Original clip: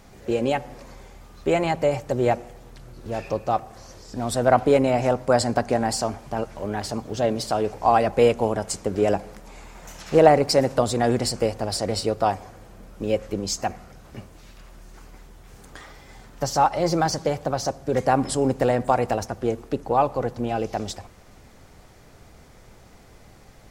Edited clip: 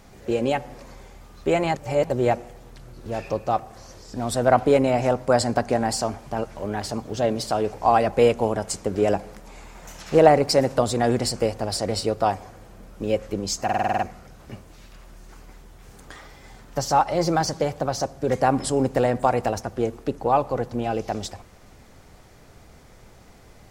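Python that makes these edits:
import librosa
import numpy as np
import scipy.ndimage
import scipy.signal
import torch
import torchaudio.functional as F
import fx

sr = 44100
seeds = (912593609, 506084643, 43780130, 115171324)

y = fx.edit(x, sr, fx.reverse_span(start_s=1.76, length_s=0.34),
    fx.stutter(start_s=13.64, slice_s=0.05, count=8), tone=tone)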